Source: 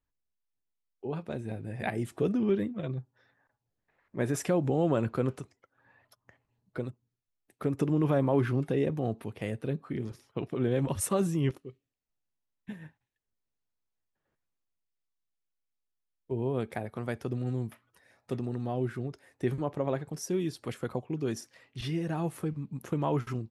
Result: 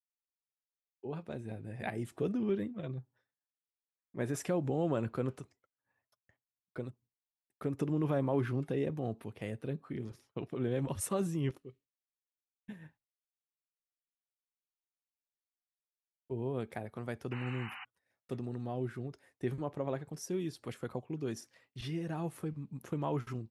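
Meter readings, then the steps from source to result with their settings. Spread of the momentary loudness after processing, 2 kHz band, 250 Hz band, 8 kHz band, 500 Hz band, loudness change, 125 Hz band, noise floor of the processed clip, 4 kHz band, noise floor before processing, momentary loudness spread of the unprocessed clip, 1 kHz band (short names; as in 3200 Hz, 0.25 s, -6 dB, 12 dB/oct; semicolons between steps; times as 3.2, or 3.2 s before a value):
13 LU, -4.5 dB, -5.5 dB, -5.5 dB, -5.5 dB, -5.5 dB, -5.5 dB, under -85 dBFS, -5.0 dB, -84 dBFS, 13 LU, -5.5 dB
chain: expander -53 dBFS; painted sound noise, 17.31–17.85, 740–3000 Hz -41 dBFS; gain -5.5 dB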